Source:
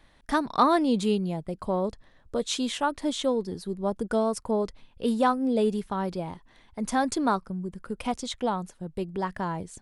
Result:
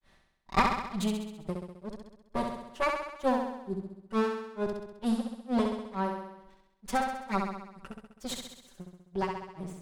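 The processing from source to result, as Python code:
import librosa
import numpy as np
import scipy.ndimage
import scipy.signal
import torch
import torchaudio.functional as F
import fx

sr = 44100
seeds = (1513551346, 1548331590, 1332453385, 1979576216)

p1 = fx.lower_of_two(x, sr, delay_ms=5.2)
p2 = fx.granulator(p1, sr, seeds[0], grain_ms=233.0, per_s=2.2, spray_ms=19.0, spread_st=0)
y = p2 + fx.room_flutter(p2, sr, wall_m=11.3, rt60_s=0.89, dry=0)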